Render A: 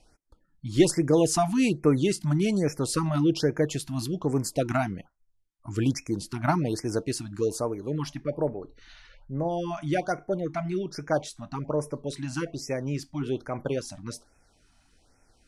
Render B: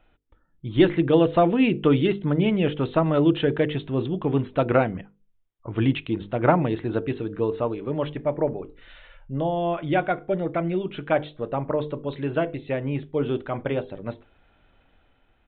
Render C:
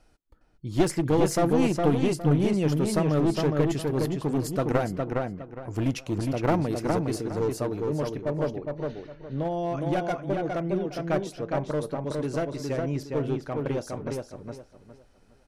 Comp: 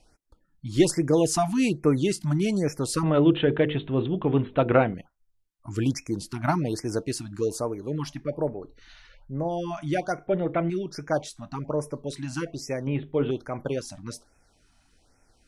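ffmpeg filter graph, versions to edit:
-filter_complex "[1:a]asplit=3[s0][s1][s2];[0:a]asplit=4[s3][s4][s5][s6];[s3]atrim=end=3.032[s7];[s0]atrim=start=3.028:end=4.942[s8];[s4]atrim=start=4.938:end=10.272[s9];[s1]atrim=start=10.268:end=10.702[s10];[s5]atrim=start=10.698:end=12.872[s11];[s2]atrim=start=12.868:end=13.312[s12];[s6]atrim=start=13.308[s13];[s7][s8]acrossfade=d=0.004:c1=hsin:c2=hsin[s14];[s14][s9]acrossfade=d=0.004:c1=hsin:c2=hsin[s15];[s15][s10]acrossfade=d=0.004:c1=hsin:c2=hsin[s16];[s16][s11]acrossfade=d=0.004:c1=hsin:c2=hsin[s17];[s17][s12]acrossfade=d=0.004:c1=hsin:c2=hsin[s18];[s18][s13]acrossfade=d=0.004:c1=hsin:c2=hsin"

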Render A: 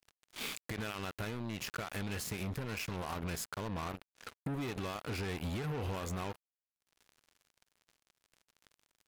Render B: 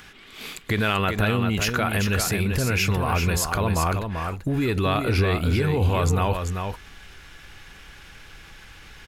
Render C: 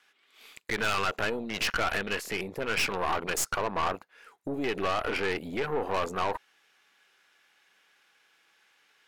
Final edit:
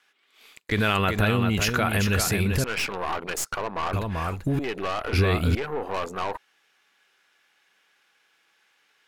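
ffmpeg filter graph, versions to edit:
-filter_complex "[1:a]asplit=3[s0][s1][s2];[2:a]asplit=4[s3][s4][s5][s6];[s3]atrim=end=0.722[s7];[s0]atrim=start=0.718:end=2.642[s8];[s4]atrim=start=2.638:end=3.932[s9];[s1]atrim=start=3.928:end=4.592[s10];[s5]atrim=start=4.588:end=5.132[s11];[s2]atrim=start=5.128:end=5.552[s12];[s6]atrim=start=5.548[s13];[s7][s8]acrossfade=d=0.004:c1=hsin:c2=hsin[s14];[s14][s9]acrossfade=d=0.004:c1=hsin:c2=hsin[s15];[s15][s10]acrossfade=d=0.004:c1=hsin:c2=hsin[s16];[s16][s11]acrossfade=d=0.004:c1=hsin:c2=hsin[s17];[s17][s12]acrossfade=d=0.004:c1=hsin:c2=hsin[s18];[s18][s13]acrossfade=d=0.004:c1=hsin:c2=hsin"

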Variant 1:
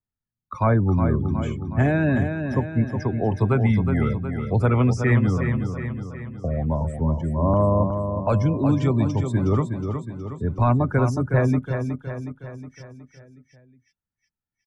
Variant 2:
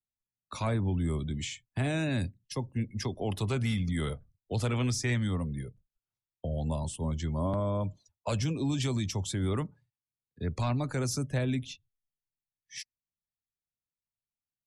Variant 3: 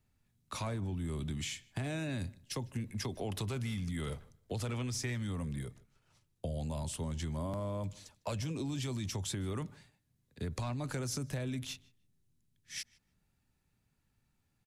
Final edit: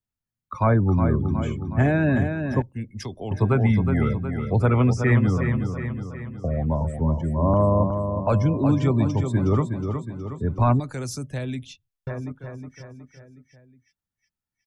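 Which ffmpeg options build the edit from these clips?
-filter_complex "[1:a]asplit=2[s0][s1];[0:a]asplit=3[s2][s3][s4];[s2]atrim=end=2.622[s5];[s0]atrim=start=2.618:end=3.312[s6];[s3]atrim=start=3.308:end=10.802[s7];[s1]atrim=start=10.798:end=12.072[s8];[s4]atrim=start=12.068[s9];[s5][s6]acrossfade=d=0.004:c1=hsin:c2=hsin[s10];[s10][s7]acrossfade=d=0.004:c1=hsin:c2=hsin[s11];[s11][s8]acrossfade=d=0.004:c1=hsin:c2=hsin[s12];[s12][s9]acrossfade=d=0.004:c1=hsin:c2=hsin"

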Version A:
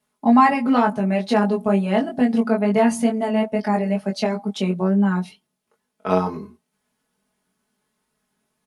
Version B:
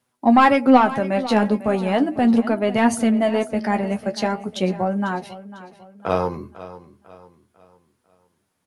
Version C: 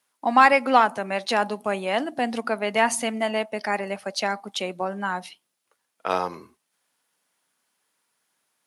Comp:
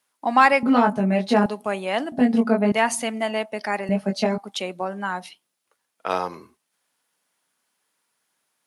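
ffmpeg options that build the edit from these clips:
-filter_complex "[0:a]asplit=3[s0][s1][s2];[2:a]asplit=4[s3][s4][s5][s6];[s3]atrim=end=0.632[s7];[s0]atrim=start=0.628:end=1.462[s8];[s4]atrim=start=1.458:end=2.122[s9];[s1]atrim=start=2.118:end=2.722[s10];[s5]atrim=start=2.718:end=3.892[s11];[s2]atrim=start=3.888:end=4.382[s12];[s6]atrim=start=4.378[s13];[s7][s8]acrossfade=d=0.004:c1=hsin:c2=hsin[s14];[s14][s9]acrossfade=d=0.004:c1=hsin:c2=hsin[s15];[s15][s10]acrossfade=d=0.004:c1=hsin:c2=hsin[s16];[s16][s11]acrossfade=d=0.004:c1=hsin:c2=hsin[s17];[s17][s12]acrossfade=d=0.004:c1=hsin:c2=hsin[s18];[s18][s13]acrossfade=d=0.004:c1=hsin:c2=hsin"

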